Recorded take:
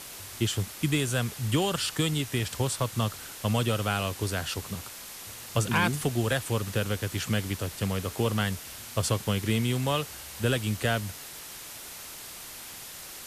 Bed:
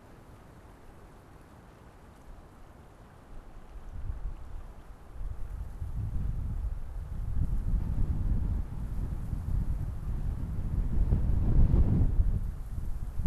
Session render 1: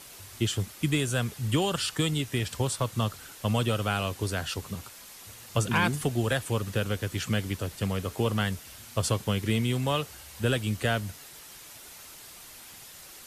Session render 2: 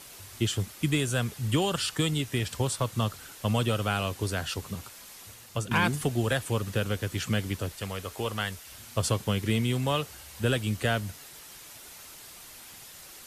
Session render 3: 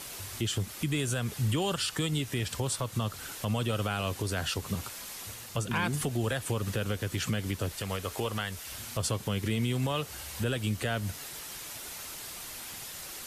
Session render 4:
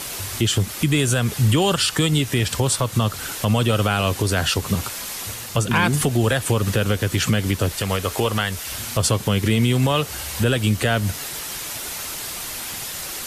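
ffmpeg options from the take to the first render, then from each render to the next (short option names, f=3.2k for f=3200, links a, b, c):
-af "afftdn=nr=6:nf=-43"
-filter_complex "[0:a]asettb=1/sr,asplit=3[a][b][c];[a]atrim=end=7.724[d];[b]atrim=start=7.72:end=8.71,asetpts=PTS-STARTPTS,afade=t=in:d=0.004:c=qsin,afade=t=out:st=0.986:d=0.004:c=qsin,equalizer=f=170:w=0.52:g=-9.5[e];[c]atrim=start=8.706[f];[d][e]acrossfade=d=0.004:c1=hsin:c2=qsin[g];[g][f]acrossfade=d=0.004:c1=qsin:c2=hsin,asplit=2[h][i];[h]atrim=end=5.71,asetpts=PTS-STARTPTS,afade=t=out:st=5.2:d=0.51:silence=0.421697[j];[i]atrim=start=5.71,asetpts=PTS-STARTPTS,afade=t=in:d=0.004:c=hsin:silence=0.421697[k];[j][k]concat=n=2:v=0:a=1"
-filter_complex "[0:a]asplit=2[a][b];[b]acompressor=threshold=-35dB:ratio=6,volume=-1.5dB[c];[a][c]amix=inputs=2:normalize=0,alimiter=limit=-21dB:level=0:latency=1:release=127"
-af "volume=11.5dB"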